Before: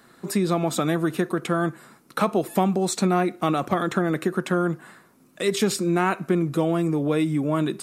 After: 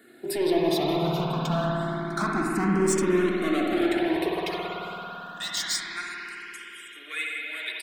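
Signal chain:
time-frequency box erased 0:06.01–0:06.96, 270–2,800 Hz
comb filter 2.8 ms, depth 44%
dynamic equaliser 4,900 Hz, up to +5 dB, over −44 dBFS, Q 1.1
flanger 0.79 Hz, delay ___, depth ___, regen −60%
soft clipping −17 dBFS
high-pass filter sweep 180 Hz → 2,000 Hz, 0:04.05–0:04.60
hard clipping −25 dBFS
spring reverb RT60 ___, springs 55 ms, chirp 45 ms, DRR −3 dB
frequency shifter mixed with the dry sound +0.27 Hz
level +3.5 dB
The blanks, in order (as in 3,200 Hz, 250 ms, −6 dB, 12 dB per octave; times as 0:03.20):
0.5 ms, 2.9 ms, 3.9 s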